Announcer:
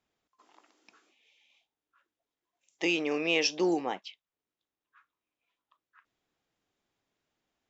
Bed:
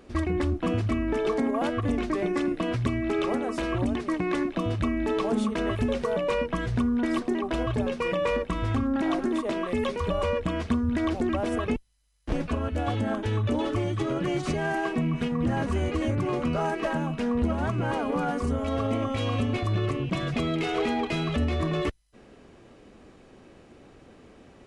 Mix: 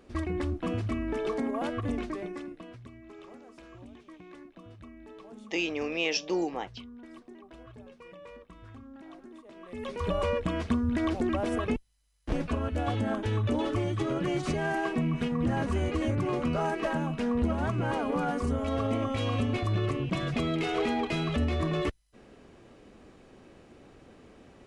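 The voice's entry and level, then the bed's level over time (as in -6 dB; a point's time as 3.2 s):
2.70 s, -2.0 dB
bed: 1.98 s -5 dB
2.87 s -22 dB
9.51 s -22 dB
10.06 s -2 dB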